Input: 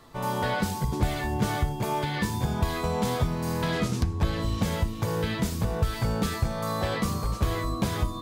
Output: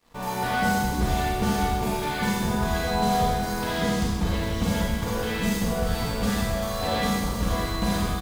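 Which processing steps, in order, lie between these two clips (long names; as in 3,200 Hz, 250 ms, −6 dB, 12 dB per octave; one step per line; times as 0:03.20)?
in parallel at −12 dB: log-companded quantiser 2 bits
on the sum: comb filter 4.2 ms, depth 46%
four-comb reverb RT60 1.4 s, combs from 31 ms, DRR −4.5 dB
dead-zone distortion −51 dBFS
level −5 dB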